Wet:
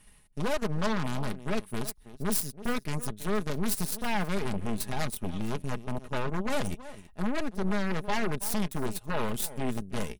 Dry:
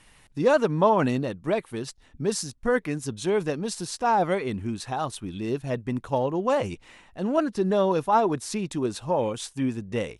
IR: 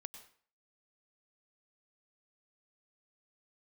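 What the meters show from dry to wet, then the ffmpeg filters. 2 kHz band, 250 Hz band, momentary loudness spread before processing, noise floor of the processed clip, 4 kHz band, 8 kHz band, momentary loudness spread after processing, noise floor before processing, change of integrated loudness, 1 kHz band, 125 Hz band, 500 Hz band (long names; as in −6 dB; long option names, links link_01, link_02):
−2.0 dB, −4.5 dB, 10 LU, −56 dBFS, −1.5 dB, 0.0 dB, 6 LU, −57 dBFS, −6.5 dB, −9.5 dB, −2.5 dB, −10.5 dB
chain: -filter_complex "[0:a]aeval=exprs='0.355*(cos(1*acos(clip(val(0)/0.355,-1,1)))-cos(1*PI/2))+0.0708*(cos(4*acos(clip(val(0)/0.355,-1,1)))-cos(4*PI/2))+0.0355*(cos(5*acos(clip(val(0)/0.355,-1,1)))-cos(5*PI/2))+0.0708*(cos(7*acos(clip(val(0)/0.355,-1,1)))-cos(7*PI/2))':channel_layout=same,lowshelf=frequency=300:gain=9,areverse,acompressor=threshold=-26dB:ratio=16,areverse,aexciter=amount=1.9:drive=6.9:freq=9200,alimiter=limit=-23.5dB:level=0:latency=1:release=97,asplit=2[link_01][link_02];[link_02]aecho=0:1:326:0.0891[link_03];[link_01][link_03]amix=inputs=2:normalize=0,aeval=exprs='0.075*sin(PI/2*2.24*val(0)/0.075)':channel_layout=same,highshelf=frequency=5500:gain=5.5,aecho=1:1:4.8:0.4"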